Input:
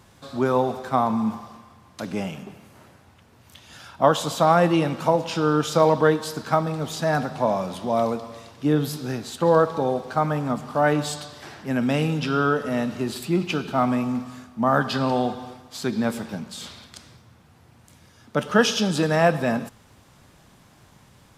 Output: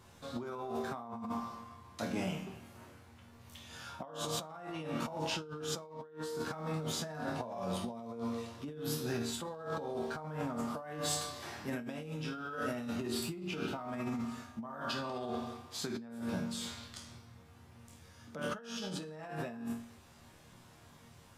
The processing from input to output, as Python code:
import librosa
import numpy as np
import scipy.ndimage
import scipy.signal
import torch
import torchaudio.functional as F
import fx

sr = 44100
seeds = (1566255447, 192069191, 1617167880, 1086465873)

y = fx.resonator_bank(x, sr, root=39, chord='minor', decay_s=0.45)
y = fx.over_compress(y, sr, threshold_db=-43.0, ratio=-1.0)
y = fx.high_shelf(y, sr, hz=10000.0, db=6.5, at=(10.58, 12.96))
y = F.gain(torch.from_numpy(y), 2.5).numpy()